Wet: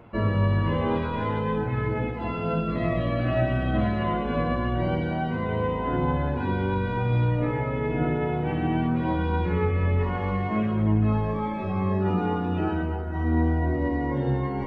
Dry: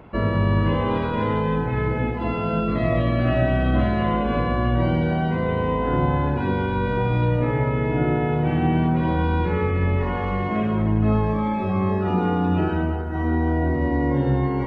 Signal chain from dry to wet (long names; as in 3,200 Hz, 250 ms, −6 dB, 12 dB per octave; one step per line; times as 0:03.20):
flanger 0.56 Hz, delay 8.5 ms, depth 4 ms, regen +45%